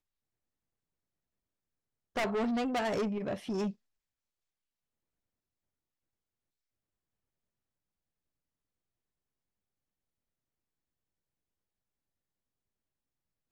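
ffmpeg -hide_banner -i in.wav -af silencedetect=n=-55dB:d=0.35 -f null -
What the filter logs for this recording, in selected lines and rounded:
silence_start: 0.00
silence_end: 2.16 | silence_duration: 2.16
silence_start: 3.73
silence_end: 13.52 | silence_duration: 9.78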